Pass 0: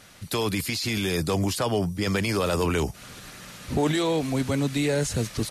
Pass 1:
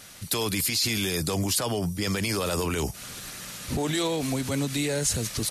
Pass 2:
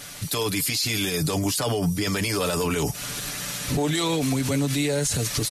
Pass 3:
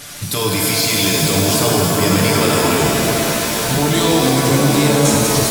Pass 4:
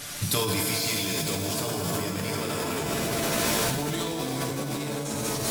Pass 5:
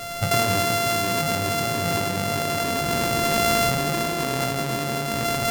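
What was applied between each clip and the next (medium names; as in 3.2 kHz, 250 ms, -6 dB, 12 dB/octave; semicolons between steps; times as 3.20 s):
peak limiter -20 dBFS, peak gain reduction 8 dB; treble shelf 4.2 kHz +9.5 dB
comb 6.9 ms, depth 55%; peak limiter -22.5 dBFS, peak gain reduction 11 dB; trim +6.5 dB
pitch-shifted reverb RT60 3.2 s, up +7 st, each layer -2 dB, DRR -1.5 dB; trim +4.5 dB
compressor with a negative ratio -20 dBFS, ratio -1; trim -8.5 dB
sorted samples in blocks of 64 samples; trim +5 dB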